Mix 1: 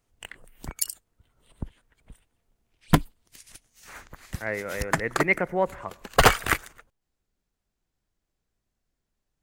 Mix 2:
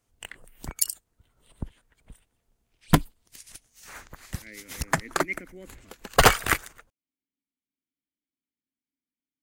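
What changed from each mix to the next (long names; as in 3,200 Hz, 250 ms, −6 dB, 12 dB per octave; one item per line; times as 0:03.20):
speech: add formant filter i
background: add bass and treble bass 0 dB, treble +3 dB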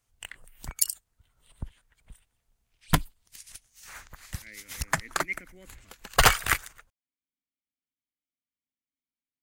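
master: add parametric band 330 Hz −9.5 dB 2.2 octaves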